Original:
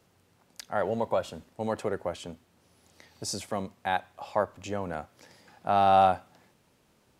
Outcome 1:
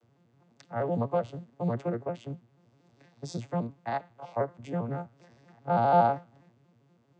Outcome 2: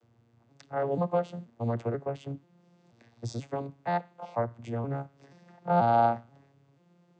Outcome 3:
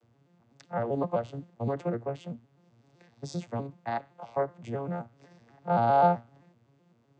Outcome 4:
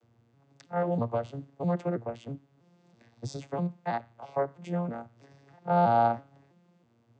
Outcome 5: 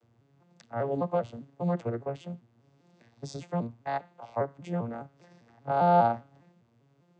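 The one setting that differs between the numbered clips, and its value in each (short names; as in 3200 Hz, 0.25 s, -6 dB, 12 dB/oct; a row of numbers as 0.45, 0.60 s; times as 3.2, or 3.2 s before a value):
arpeggiated vocoder, a note every: 80, 483, 128, 325, 200 ms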